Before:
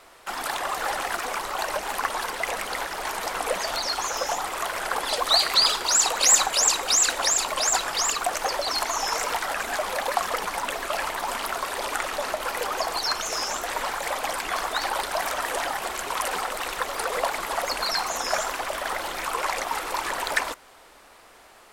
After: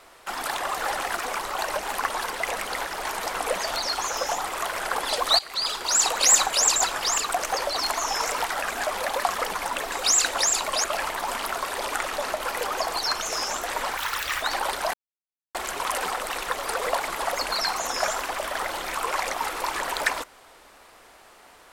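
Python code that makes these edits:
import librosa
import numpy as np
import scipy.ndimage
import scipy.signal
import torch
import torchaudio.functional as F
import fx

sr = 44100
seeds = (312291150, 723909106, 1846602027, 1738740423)

y = fx.edit(x, sr, fx.fade_in_from(start_s=5.39, length_s=0.65, floor_db=-20.0),
    fx.move(start_s=6.76, length_s=0.92, to_s=10.84),
    fx.speed_span(start_s=13.97, length_s=0.75, speed=1.68),
    fx.silence(start_s=15.24, length_s=0.61), tone=tone)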